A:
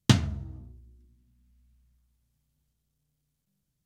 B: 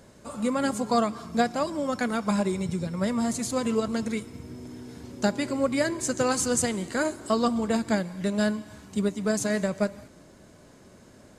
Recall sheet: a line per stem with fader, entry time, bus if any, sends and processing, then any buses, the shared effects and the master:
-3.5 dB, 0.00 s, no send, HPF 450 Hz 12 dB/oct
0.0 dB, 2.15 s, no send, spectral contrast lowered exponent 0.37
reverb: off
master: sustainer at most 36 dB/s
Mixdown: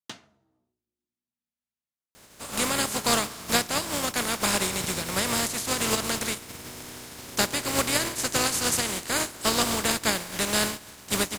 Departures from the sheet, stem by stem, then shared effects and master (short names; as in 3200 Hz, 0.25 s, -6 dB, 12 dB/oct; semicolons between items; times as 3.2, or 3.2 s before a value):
stem A -3.5 dB -> -13.5 dB; master: missing sustainer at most 36 dB/s